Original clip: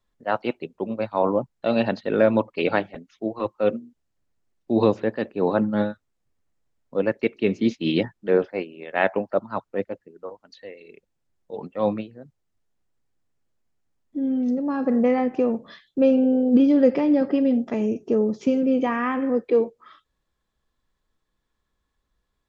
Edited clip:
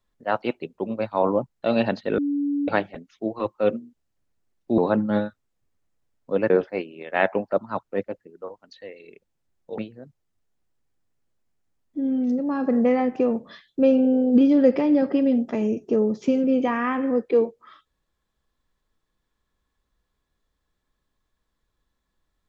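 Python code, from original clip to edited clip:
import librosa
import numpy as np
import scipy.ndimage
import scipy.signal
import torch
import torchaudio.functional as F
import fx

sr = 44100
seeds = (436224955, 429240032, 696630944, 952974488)

y = fx.edit(x, sr, fx.bleep(start_s=2.18, length_s=0.5, hz=286.0, db=-21.0),
    fx.cut(start_s=4.78, length_s=0.64),
    fx.cut(start_s=7.14, length_s=1.17),
    fx.cut(start_s=11.59, length_s=0.38), tone=tone)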